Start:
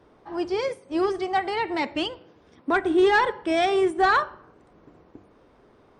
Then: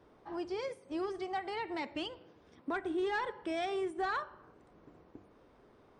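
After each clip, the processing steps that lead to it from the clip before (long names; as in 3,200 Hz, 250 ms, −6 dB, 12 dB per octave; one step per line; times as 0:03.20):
downward compressor 2 to 1, threshold −33 dBFS, peak gain reduction 10 dB
level −6 dB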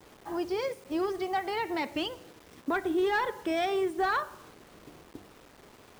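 bit reduction 10 bits
level +6.5 dB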